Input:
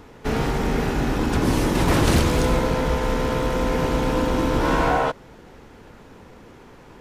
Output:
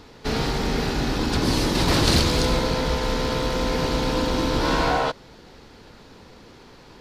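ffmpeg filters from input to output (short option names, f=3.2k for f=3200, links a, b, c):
-af "equalizer=f=4.4k:t=o:w=0.82:g=12.5,volume=-2dB"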